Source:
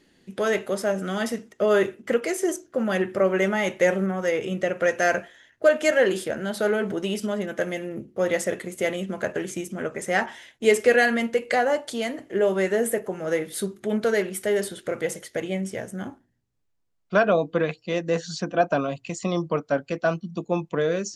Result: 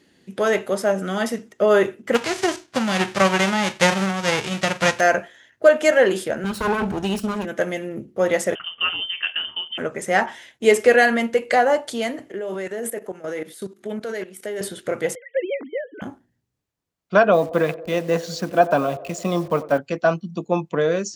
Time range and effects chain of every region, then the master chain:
0:02.14–0:04.99: spectral envelope flattened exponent 0.3 + low-pass filter 5,500 Hz
0:06.44–0:07.45: lower of the sound and its delayed copy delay 0.72 ms + low-shelf EQ 240 Hz +5.5 dB
0:08.55–0:09.78: high-frequency loss of the air 180 metres + voice inversion scrambler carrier 3,300 Hz
0:12.32–0:14.61: high-pass filter 190 Hz + output level in coarse steps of 15 dB
0:15.15–0:16.02: three sine waves on the formant tracks + high-pass filter 320 Hz
0:17.33–0:19.78: hold until the input has moved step −41 dBFS + feedback echo with a band-pass in the loop 90 ms, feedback 78%, band-pass 540 Hz, level −15 dB
whole clip: high-pass filter 59 Hz; dynamic equaliser 860 Hz, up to +4 dB, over −31 dBFS, Q 1.2; level +2.5 dB

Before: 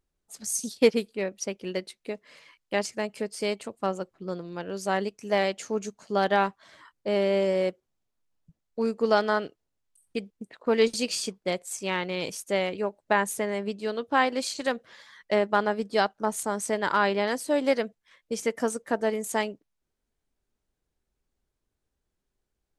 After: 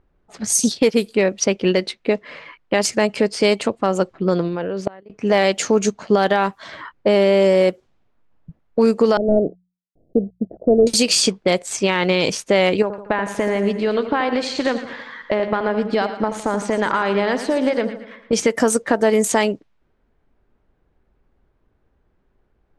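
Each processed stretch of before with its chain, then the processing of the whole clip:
0:04.48–0:05.10: dynamic equaliser 500 Hz, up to +5 dB, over −44 dBFS, Q 3.6 + output level in coarse steps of 14 dB + gate with flip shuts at −27 dBFS, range −30 dB
0:09.17–0:10.87: variable-slope delta modulation 16 kbit/s + elliptic low-pass filter 680 Hz + mains-hum notches 60/120/180 Hz
0:12.82–0:18.33: downward compressor 10 to 1, threshold −33 dBFS + echo with a time of its own for lows and highs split 1,300 Hz, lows 80 ms, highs 114 ms, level −10 dB
whole clip: low-pass that shuts in the quiet parts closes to 1,700 Hz, open at −23.5 dBFS; downward compressor, threshold −27 dBFS; boost into a limiter +23 dB; level −5 dB

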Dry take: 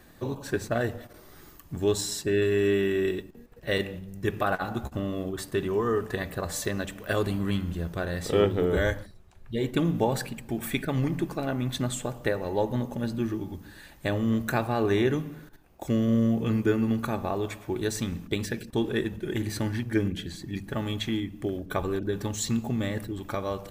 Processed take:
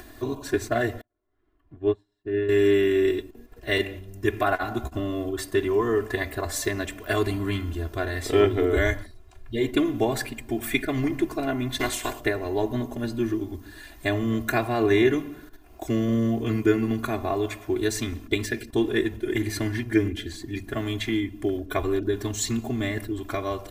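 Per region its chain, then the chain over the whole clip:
0:01.01–0:02.49: high-frequency loss of the air 490 metres + expander for the loud parts 2.5 to 1, over −44 dBFS
0:11.79–0:12.19: ceiling on every frequency bin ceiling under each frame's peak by 21 dB + notch filter 1,300 Hz, Q 10
whole clip: comb filter 2.9 ms, depth 96%; dynamic equaliser 2,100 Hz, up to +6 dB, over −48 dBFS, Q 3.8; upward compression, threshold −39 dBFS

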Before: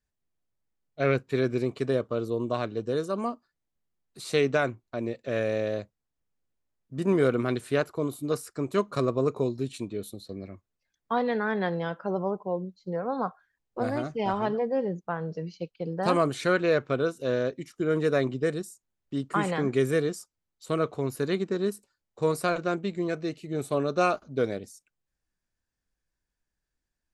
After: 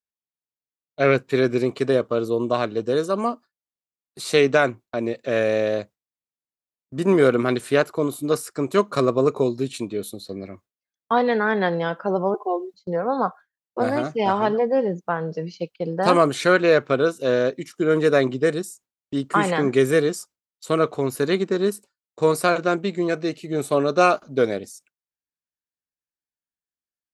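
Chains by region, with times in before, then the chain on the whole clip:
0:12.34–0:12.74: high-pass filter 340 Hz 24 dB per octave + comb filter 2.7 ms, depth 92%
whole clip: high-pass filter 210 Hz 6 dB per octave; noise gate with hold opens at −45 dBFS; level +8 dB

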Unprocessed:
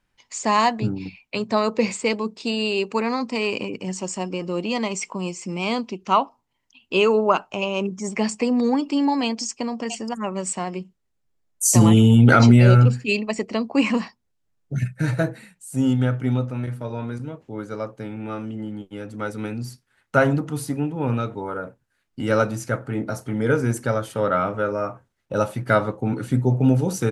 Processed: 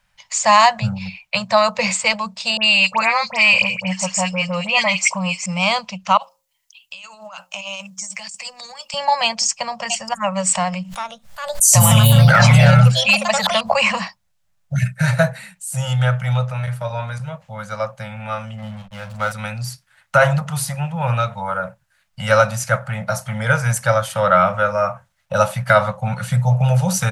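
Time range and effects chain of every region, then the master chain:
0:02.57–0:05.46: parametric band 2,300 Hz +8 dB 0.55 octaves + all-pass dispersion highs, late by 70 ms, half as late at 2,200 Hz
0:06.17–0:08.94: first-order pre-emphasis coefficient 0.9 + mains-hum notches 60/120/180/240/300/360/420/480/540 Hz + compressor whose output falls as the input rises −41 dBFS
0:10.55–0:13.89: delay with pitch and tempo change per echo 407 ms, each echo +4 semitones, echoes 2, each echo −6 dB + background raised ahead of every attack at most 74 dB per second
0:18.58–0:19.32: double-tracking delay 46 ms −8 dB + slack as between gear wheels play −38 dBFS
whole clip: elliptic band-stop filter 190–560 Hz, stop band 40 dB; low-shelf EQ 490 Hz −4.5 dB; boost into a limiter +11.5 dB; level −1 dB

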